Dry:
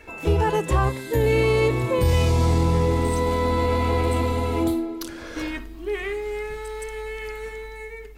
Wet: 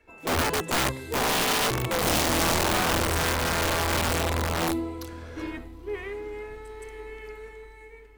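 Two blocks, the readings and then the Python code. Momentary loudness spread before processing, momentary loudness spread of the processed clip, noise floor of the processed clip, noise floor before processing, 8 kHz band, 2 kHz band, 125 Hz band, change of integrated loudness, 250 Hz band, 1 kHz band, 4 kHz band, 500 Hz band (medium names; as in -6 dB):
13 LU, 18 LU, -48 dBFS, -38 dBFS, +9.0 dB, +2.5 dB, -9.5 dB, -2.0 dB, -5.0 dB, -1.0 dB, +7.0 dB, -7.0 dB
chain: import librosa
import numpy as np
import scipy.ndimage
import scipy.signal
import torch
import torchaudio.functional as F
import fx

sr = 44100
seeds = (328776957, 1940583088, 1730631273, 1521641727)

y = fx.echo_diffused(x, sr, ms=926, feedback_pct=40, wet_db=-13.5)
y = (np.mod(10.0 ** (15.5 / 20.0) * y + 1.0, 2.0) - 1.0) / 10.0 ** (15.5 / 20.0)
y = fx.band_widen(y, sr, depth_pct=40)
y = y * 10.0 ** (-4.0 / 20.0)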